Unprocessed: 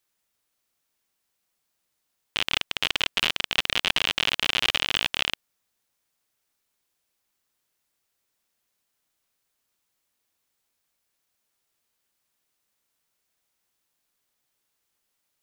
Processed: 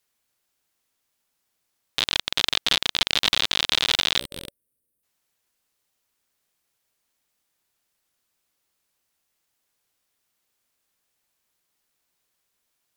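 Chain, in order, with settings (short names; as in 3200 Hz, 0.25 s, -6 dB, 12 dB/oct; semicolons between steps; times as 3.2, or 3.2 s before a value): varispeed +19%; spectral gain 4.2–5.03, 570–8300 Hz -16 dB; gain +2.5 dB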